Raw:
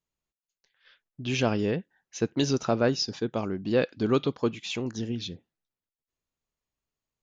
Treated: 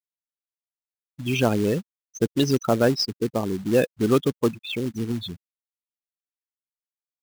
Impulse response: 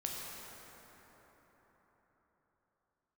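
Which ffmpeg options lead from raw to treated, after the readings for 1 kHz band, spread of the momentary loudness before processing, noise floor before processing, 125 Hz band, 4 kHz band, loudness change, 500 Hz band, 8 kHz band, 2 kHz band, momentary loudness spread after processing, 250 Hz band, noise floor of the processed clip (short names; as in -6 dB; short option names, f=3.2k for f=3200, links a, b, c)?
+3.5 dB, 9 LU, under -85 dBFS, +4.5 dB, +3.0 dB, +4.5 dB, +4.5 dB, n/a, +3.0 dB, 8 LU, +4.5 dB, under -85 dBFS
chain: -af "afftfilt=real='re*gte(hypot(re,im),0.0447)':imag='im*gte(hypot(re,im),0.0447)':win_size=1024:overlap=0.75,acrusher=bits=4:mode=log:mix=0:aa=0.000001,volume=4.5dB"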